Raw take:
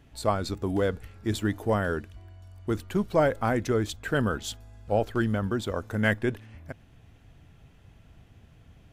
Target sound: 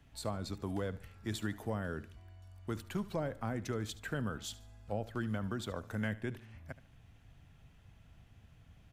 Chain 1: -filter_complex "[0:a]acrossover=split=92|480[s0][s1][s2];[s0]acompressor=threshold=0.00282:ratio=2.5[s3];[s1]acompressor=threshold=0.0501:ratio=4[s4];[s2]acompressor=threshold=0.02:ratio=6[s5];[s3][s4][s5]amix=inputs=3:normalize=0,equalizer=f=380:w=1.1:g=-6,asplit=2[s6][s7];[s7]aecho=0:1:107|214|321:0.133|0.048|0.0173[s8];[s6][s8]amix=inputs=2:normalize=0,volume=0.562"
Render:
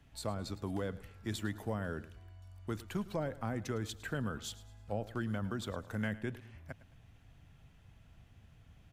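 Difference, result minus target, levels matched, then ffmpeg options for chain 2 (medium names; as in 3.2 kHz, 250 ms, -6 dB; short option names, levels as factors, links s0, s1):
echo 34 ms late
-filter_complex "[0:a]acrossover=split=92|480[s0][s1][s2];[s0]acompressor=threshold=0.00282:ratio=2.5[s3];[s1]acompressor=threshold=0.0501:ratio=4[s4];[s2]acompressor=threshold=0.02:ratio=6[s5];[s3][s4][s5]amix=inputs=3:normalize=0,equalizer=f=380:w=1.1:g=-6,asplit=2[s6][s7];[s7]aecho=0:1:73|146|219:0.133|0.048|0.0173[s8];[s6][s8]amix=inputs=2:normalize=0,volume=0.562"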